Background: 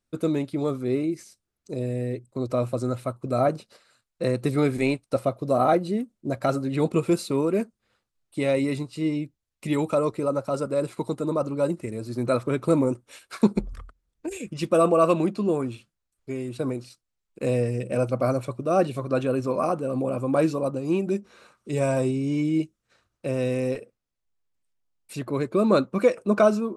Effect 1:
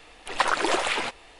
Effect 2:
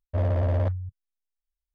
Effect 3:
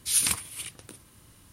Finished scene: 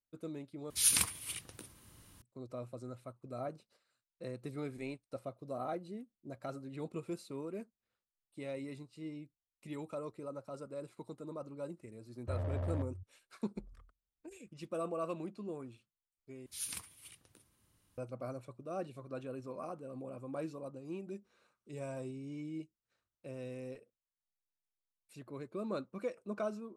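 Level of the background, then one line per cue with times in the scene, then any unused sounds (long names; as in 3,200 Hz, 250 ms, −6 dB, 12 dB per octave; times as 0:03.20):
background −19 dB
0:00.70: overwrite with 3 −4.5 dB
0:12.14: mix in 2 −13 dB
0:16.46: overwrite with 3 −17.5 dB
not used: 1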